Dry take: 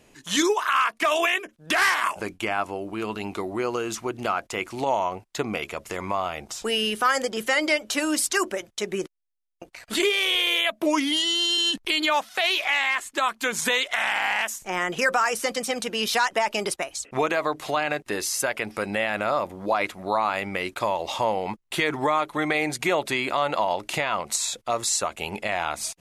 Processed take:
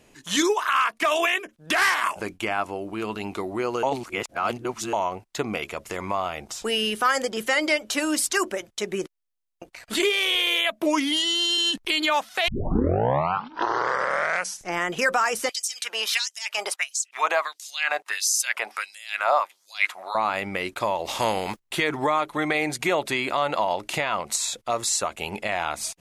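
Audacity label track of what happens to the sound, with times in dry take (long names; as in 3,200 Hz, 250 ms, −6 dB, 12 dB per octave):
3.830000	4.930000	reverse
12.480000	12.480000	tape start 2.37 s
15.490000	20.150000	auto-filter high-pass sine 1.5 Hz 720–6,500 Hz
21.050000	21.580000	compressing power law on the bin magnitudes exponent 0.65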